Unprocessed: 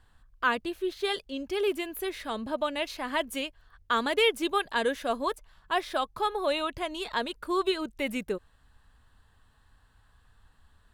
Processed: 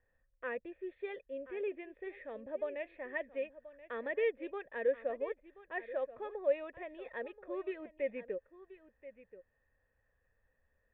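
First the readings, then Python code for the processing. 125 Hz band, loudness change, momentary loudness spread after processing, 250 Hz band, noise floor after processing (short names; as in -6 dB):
n/a, -9.5 dB, 19 LU, -13.5 dB, -78 dBFS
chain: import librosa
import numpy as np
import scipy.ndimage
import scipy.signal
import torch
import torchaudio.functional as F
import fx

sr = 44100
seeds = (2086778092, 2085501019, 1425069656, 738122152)

y = fx.formant_cascade(x, sr, vowel='e')
y = y + 10.0 ** (-15.5 / 20.0) * np.pad(y, (int(1030 * sr / 1000.0), 0))[:len(y)]
y = F.gain(torch.from_numpy(y), 2.0).numpy()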